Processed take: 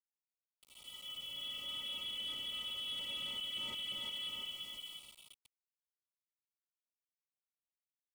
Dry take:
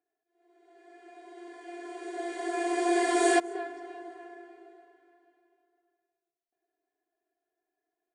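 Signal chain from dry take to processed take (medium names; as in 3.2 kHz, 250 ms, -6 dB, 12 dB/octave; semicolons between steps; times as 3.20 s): peaking EQ 110 Hz -12.5 dB 2.1 oct; on a send: echo whose repeats swap between lows and highs 175 ms, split 1.5 kHz, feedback 62%, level -3 dB; on the sum: frequency inversion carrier 3.7 kHz; reverse; compression 16:1, threshold -40 dBFS, peak gain reduction 22 dB; reverse; small samples zeroed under -55 dBFS; bass shelf 190 Hz +11.5 dB; waveshaping leveller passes 2; Butterworth band-stop 1.7 kHz, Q 1.9; slew-rate limiter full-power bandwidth 62 Hz; trim -3 dB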